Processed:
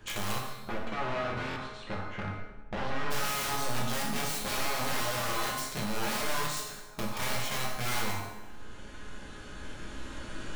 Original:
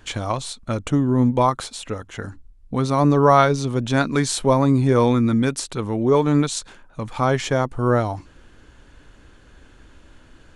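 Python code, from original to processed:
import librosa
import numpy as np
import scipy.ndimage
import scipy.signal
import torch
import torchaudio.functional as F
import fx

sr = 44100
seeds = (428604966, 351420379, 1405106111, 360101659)

y = fx.recorder_agc(x, sr, target_db=-12.0, rise_db_per_s=5.6, max_gain_db=30)
y = (np.mod(10.0 ** (12.5 / 20.0) * y + 1.0, 2.0) - 1.0) / 10.0 ** (12.5 / 20.0)
y = fx.dynamic_eq(y, sr, hz=550.0, q=1.6, threshold_db=-33.0, ratio=4.0, max_db=-5)
y = (np.mod(10.0 ** (19.5 / 20.0) * y + 1.0, 2.0) - 1.0) / 10.0 ** (19.5 / 20.0)
y = fx.lowpass(y, sr, hz=1900.0, slope=12, at=(0.38, 3.1), fade=0.02)
y = fx.comb_fb(y, sr, f0_hz=210.0, decay_s=0.76, harmonics='all', damping=0.0, mix_pct=80)
y = fx.rev_plate(y, sr, seeds[0], rt60_s=0.88, hf_ratio=0.75, predelay_ms=0, drr_db=-2.0)
y = fx.buffer_glitch(y, sr, at_s=(1.49,), block=1024, repeats=2)
y = fx.band_squash(y, sr, depth_pct=40)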